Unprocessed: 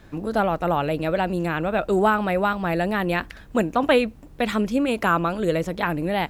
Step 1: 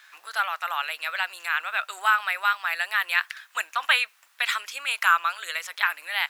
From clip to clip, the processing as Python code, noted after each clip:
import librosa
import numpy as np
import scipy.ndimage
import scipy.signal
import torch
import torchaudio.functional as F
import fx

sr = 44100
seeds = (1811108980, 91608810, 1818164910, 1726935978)

y = scipy.signal.sosfilt(scipy.signal.butter(4, 1300.0, 'highpass', fs=sr, output='sos'), x)
y = F.gain(torch.from_numpy(y), 5.5).numpy()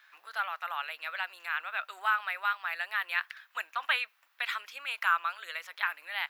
y = fx.peak_eq(x, sr, hz=8200.0, db=-12.0, octaves=1.3)
y = F.gain(torch.from_numpy(y), -6.5).numpy()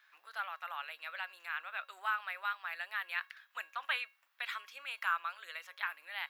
y = fx.comb_fb(x, sr, f0_hz=550.0, decay_s=0.34, harmonics='all', damping=0.0, mix_pct=60)
y = F.gain(torch.from_numpy(y), 1.0).numpy()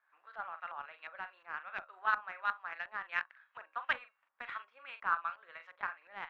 y = fx.doubler(x, sr, ms=42.0, db=-9.0)
y = fx.cheby_harmonics(y, sr, harmonics=(7,), levels_db=(-23,), full_scale_db=-19.0)
y = fx.filter_lfo_lowpass(y, sr, shape='saw_up', hz=2.8, low_hz=840.0, high_hz=2200.0, q=0.89)
y = F.gain(torch.from_numpy(y), 4.0).numpy()